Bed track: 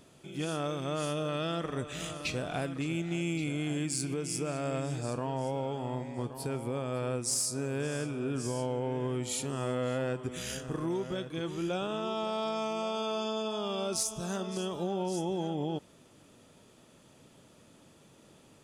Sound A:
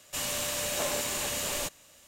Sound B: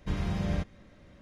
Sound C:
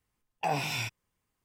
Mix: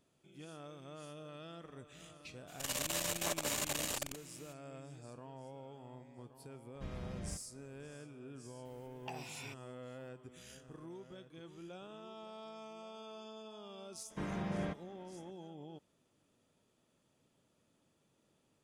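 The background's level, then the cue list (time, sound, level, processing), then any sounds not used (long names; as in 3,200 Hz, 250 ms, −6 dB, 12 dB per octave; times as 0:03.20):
bed track −17 dB
0:02.47: mix in A −2 dB, fades 0.02 s + saturating transformer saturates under 1,200 Hz
0:06.74: mix in B −14 dB
0:08.65: mix in C −16.5 dB + multiband upward and downward compressor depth 100%
0:14.10: mix in B −2.5 dB + three-way crossover with the lows and the highs turned down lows −21 dB, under 160 Hz, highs −12 dB, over 2,500 Hz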